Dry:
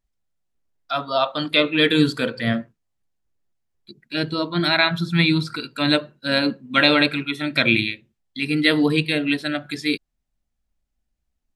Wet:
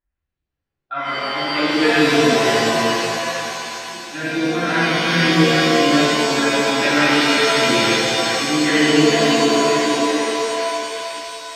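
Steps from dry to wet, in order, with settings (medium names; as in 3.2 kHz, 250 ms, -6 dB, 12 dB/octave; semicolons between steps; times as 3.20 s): feedback echo behind a high-pass 354 ms, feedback 68%, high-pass 1.6 kHz, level -3 dB; LFO low-pass square 2.2 Hz 380–1700 Hz; pitch-shifted reverb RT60 2.5 s, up +7 st, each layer -2 dB, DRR -10 dB; trim -11 dB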